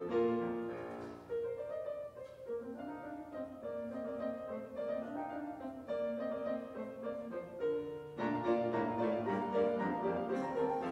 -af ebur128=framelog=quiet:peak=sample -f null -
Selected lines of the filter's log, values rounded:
Integrated loudness:
  I:         -39.0 LUFS
  Threshold: -49.0 LUFS
Loudness range:
  LRA:         7.4 LU
  Threshold: -59.9 LUFS
  LRA low:   -43.5 LUFS
  LRA high:  -36.2 LUFS
Sample peak:
  Peak:      -22.7 dBFS